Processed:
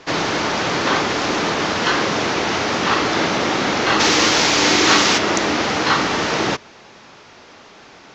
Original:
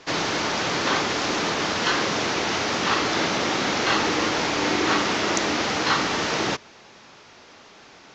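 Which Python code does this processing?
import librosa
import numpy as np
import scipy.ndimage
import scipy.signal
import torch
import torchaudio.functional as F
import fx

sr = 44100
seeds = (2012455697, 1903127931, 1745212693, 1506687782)

y = fx.high_shelf(x, sr, hz=3000.0, db=fx.steps((0.0, -4.5), (3.99, 9.5), (5.17, -3.5)))
y = y * librosa.db_to_amplitude(5.5)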